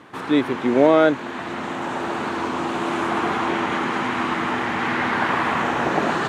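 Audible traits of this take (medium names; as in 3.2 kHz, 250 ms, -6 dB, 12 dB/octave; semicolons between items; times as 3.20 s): noise floor -32 dBFS; spectral tilt -3.5 dB/octave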